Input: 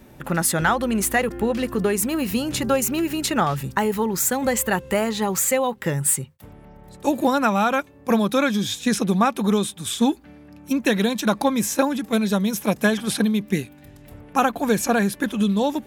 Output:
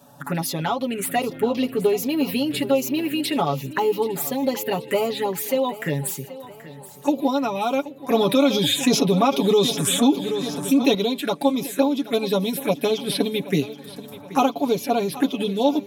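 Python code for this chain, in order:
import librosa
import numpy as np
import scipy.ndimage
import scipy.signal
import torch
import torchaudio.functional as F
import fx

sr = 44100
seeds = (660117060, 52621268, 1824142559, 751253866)

y = scipy.signal.sosfilt(scipy.signal.butter(2, 200.0, 'highpass', fs=sr, output='sos'), x)
y = fx.high_shelf(y, sr, hz=12000.0, db=-3.5)
y = y + 0.81 * np.pad(y, (int(7.1 * sr / 1000.0), 0))[:len(y)]
y = fx.rider(y, sr, range_db=4, speed_s=0.5)
y = fx.env_phaser(y, sr, low_hz=340.0, high_hz=1700.0, full_db=-17.0)
y = fx.echo_feedback(y, sr, ms=779, feedback_pct=48, wet_db=-16.5)
y = fx.env_flatten(y, sr, amount_pct=50, at=(8.14, 10.95))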